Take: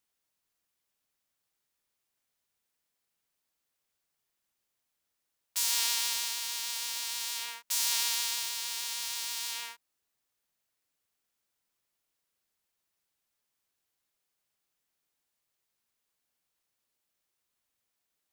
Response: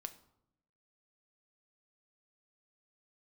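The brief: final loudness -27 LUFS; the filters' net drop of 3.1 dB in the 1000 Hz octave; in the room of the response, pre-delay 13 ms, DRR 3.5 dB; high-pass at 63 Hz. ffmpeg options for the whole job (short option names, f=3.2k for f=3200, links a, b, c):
-filter_complex "[0:a]highpass=63,equalizer=f=1k:t=o:g=-3.5,asplit=2[a][b];[1:a]atrim=start_sample=2205,adelay=13[c];[b][c]afir=irnorm=-1:irlink=0,volume=0.5dB[d];[a][d]amix=inputs=2:normalize=0,volume=1.5dB"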